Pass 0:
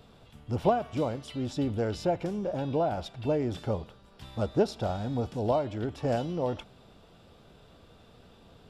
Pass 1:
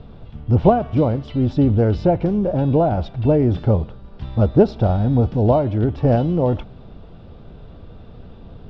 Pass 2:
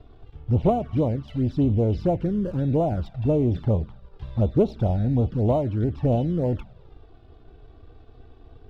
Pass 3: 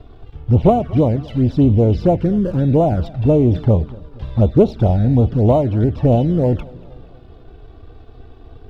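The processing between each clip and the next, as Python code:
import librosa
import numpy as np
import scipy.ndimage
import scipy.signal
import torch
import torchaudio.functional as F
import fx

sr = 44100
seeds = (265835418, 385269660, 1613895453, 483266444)

y1 = scipy.signal.sosfilt(scipy.signal.butter(4, 5100.0, 'lowpass', fs=sr, output='sos'), x)
y1 = fx.tilt_eq(y1, sr, slope=-3.0)
y1 = y1 * librosa.db_to_amplitude(7.5)
y2 = fx.leveller(y1, sr, passes=1)
y2 = fx.env_flanger(y2, sr, rest_ms=3.1, full_db=-8.5)
y2 = y2 * librosa.db_to_amplitude(-8.0)
y3 = fx.echo_feedback(y2, sr, ms=238, feedback_pct=53, wet_db=-23)
y3 = y3 * librosa.db_to_amplitude(8.0)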